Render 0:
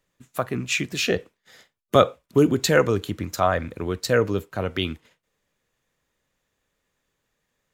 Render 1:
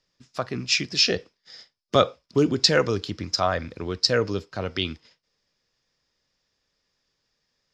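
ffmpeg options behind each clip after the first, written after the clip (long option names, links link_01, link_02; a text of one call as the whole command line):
ffmpeg -i in.wav -af "lowpass=frequency=5100:width_type=q:width=9.1,volume=-3dB" out.wav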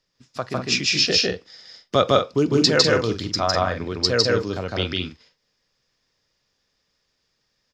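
ffmpeg -i in.wav -af "aecho=1:1:154.5|198.3:1|0.447" out.wav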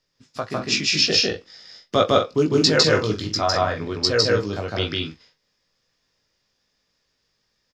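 ffmpeg -i in.wav -filter_complex "[0:a]asplit=2[link_01][link_02];[link_02]adelay=19,volume=-4.5dB[link_03];[link_01][link_03]amix=inputs=2:normalize=0,volume=-1dB" out.wav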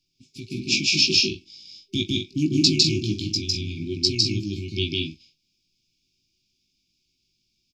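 ffmpeg -i in.wav -af "afftfilt=real='re*(1-between(b*sr/4096,390,2200))':imag='im*(1-between(b*sr/4096,390,2200))':win_size=4096:overlap=0.75" out.wav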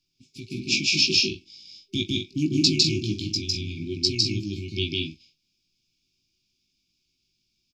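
ffmpeg -i in.wav -af "equalizer=frequency=1400:width_type=o:width=0.95:gain=5.5,volume=-2dB" out.wav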